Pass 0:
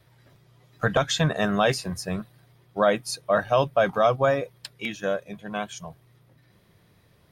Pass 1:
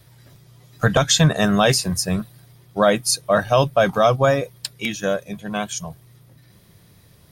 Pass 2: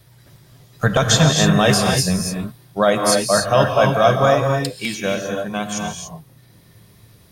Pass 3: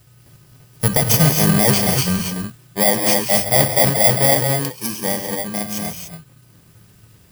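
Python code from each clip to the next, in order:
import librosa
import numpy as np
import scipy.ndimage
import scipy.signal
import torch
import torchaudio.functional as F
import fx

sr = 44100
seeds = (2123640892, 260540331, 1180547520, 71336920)

y1 = fx.bass_treble(x, sr, bass_db=5, treble_db=10)
y1 = y1 * librosa.db_to_amplitude(4.0)
y2 = fx.rev_gated(y1, sr, seeds[0], gate_ms=310, shape='rising', drr_db=1.5)
y3 = fx.bit_reversed(y2, sr, seeds[1], block=32)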